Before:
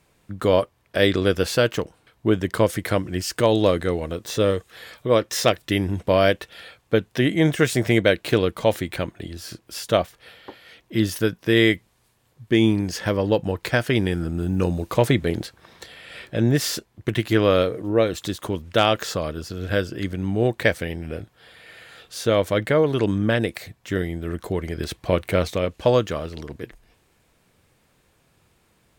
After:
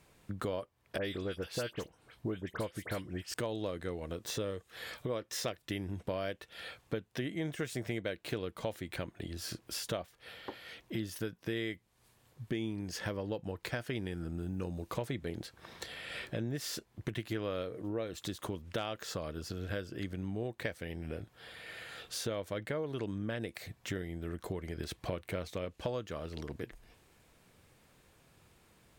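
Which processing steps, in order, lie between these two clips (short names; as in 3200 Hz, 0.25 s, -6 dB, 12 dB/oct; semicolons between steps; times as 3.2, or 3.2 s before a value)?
compressor 4:1, threshold -35 dBFS, peak gain reduction 19 dB; 0.98–3.34 dispersion highs, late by 67 ms, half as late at 2500 Hz; gain -2 dB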